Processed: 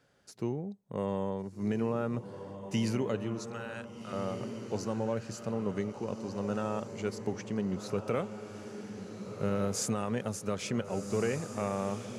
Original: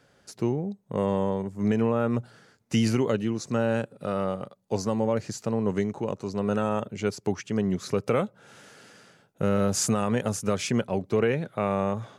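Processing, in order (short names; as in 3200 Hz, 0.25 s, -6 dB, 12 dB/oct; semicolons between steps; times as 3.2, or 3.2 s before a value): 3.39–4.13 HPF 1100 Hz; diffused feedback echo 1.498 s, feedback 43%, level -8.5 dB; gain -7.5 dB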